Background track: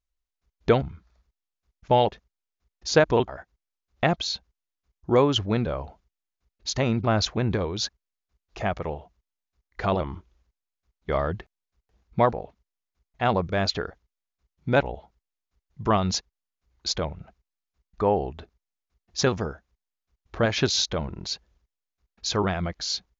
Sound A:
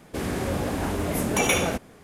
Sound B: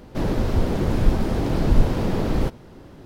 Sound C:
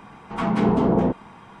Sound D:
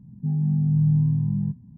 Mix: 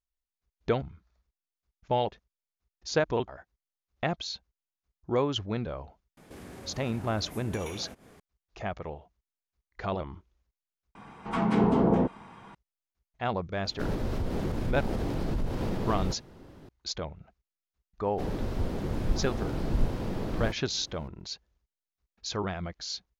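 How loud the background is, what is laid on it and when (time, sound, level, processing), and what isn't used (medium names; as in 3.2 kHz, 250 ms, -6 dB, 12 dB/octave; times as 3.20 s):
background track -7.5 dB
6.17 s: add A -4.5 dB + compression 2.5:1, threshold -44 dBFS
10.95 s: replace with C -4 dB
13.64 s: add B -6.5 dB + peak limiter -15.5 dBFS
18.03 s: add B -10 dB
not used: D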